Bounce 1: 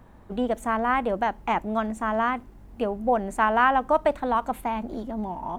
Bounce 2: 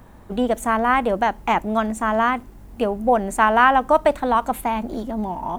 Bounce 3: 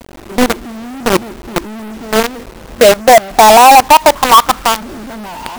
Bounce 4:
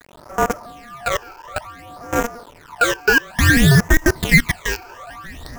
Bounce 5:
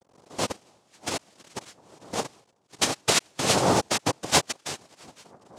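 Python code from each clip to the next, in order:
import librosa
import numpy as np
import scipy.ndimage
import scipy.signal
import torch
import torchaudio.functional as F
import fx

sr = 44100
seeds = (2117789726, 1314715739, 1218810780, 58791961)

y1 = fx.high_shelf(x, sr, hz=5200.0, db=8.0)
y1 = y1 * 10.0 ** (5.0 / 20.0)
y2 = fx.filter_sweep_lowpass(y1, sr, from_hz=350.0, to_hz=1500.0, start_s=1.72, end_s=4.94, q=6.1)
y2 = fx.quant_companded(y2, sr, bits=2)
y2 = y2 * 10.0 ** (-1.0 / 20.0)
y3 = y2 * np.sin(2.0 * np.pi * 950.0 * np.arange(len(y2)) / sr)
y3 = fx.phaser_stages(y3, sr, stages=12, low_hz=190.0, high_hz=3900.0, hz=0.57, feedback_pct=45)
y3 = y3 * 10.0 ** (-4.5 / 20.0)
y4 = fx.env_lowpass(y3, sr, base_hz=690.0, full_db=-12.5)
y4 = fx.dereverb_blind(y4, sr, rt60_s=1.7)
y4 = fx.noise_vocoder(y4, sr, seeds[0], bands=2)
y4 = y4 * 10.0 ** (-8.0 / 20.0)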